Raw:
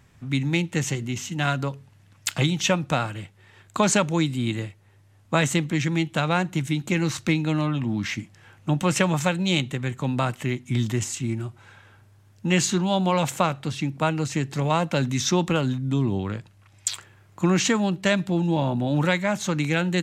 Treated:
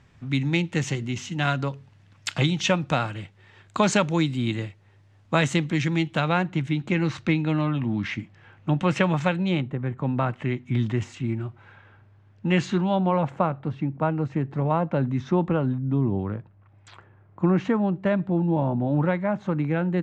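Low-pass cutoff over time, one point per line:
6.04 s 5.3 kHz
6.49 s 3 kHz
9.36 s 3 kHz
9.72 s 1.1 kHz
10.54 s 2.5 kHz
12.80 s 2.5 kHz
13.20 s 1.2 kHz

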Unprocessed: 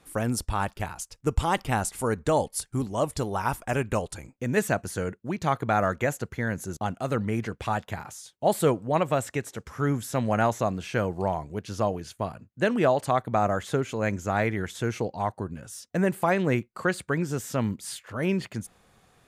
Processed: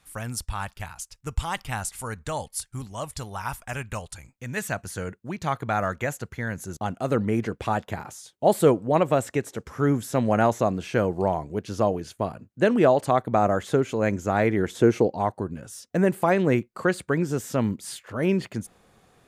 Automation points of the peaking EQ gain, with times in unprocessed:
peaking EQ 360 Hz 2.1 oct
4.46 s -12.5 dB
5.03 s -3.5 dB
6.59 s -3.5 dB
7.12 s +5.5 dB
14.40 s +5.5 dB
14.83 s +14 dB
15.37 s +4.5 dB

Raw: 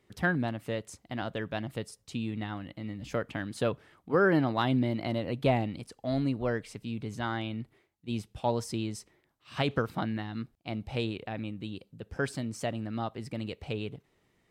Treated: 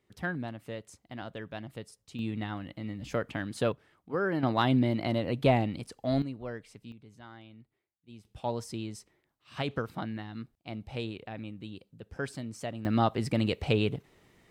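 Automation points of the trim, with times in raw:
-6 dB
from 2.19 s +0.5 dB
from 3.72 s -6 dB
from 4.43 s +2 dB
from 6.22 s -8.5 dB
from 6.92 s -16.5 dB
from 8.25 s -4 dB
from 12.85 s +8.5 dB

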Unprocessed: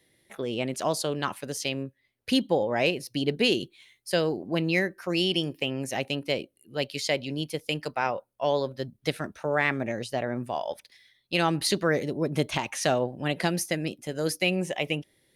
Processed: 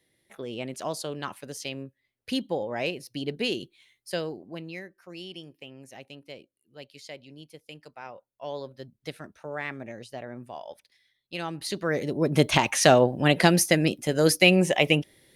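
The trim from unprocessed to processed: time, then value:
4.14 s -5 dB
4.83 s -15.5 dB
7.96 s -15.5 dB
8.61 s -9 dB
11.58 s -9 dB
12.05 s +0.5 dB
12.53 s +7.5 dB

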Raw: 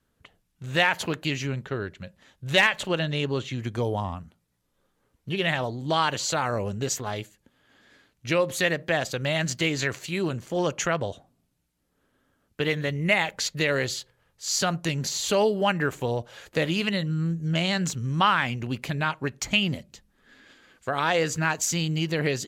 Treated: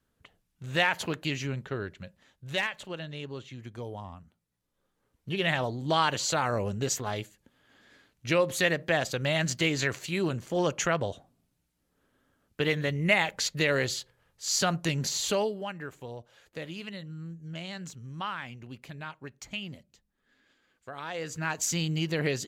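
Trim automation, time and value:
2.01 s -3.5 dB
2.77 s -12 dB
4.02 s -12 dB
5.56 s -1.5 dB
15.24 s -1.5 dB
15.69 s -14 dB
21.09 s -14 dB
21.65 s -3 dB

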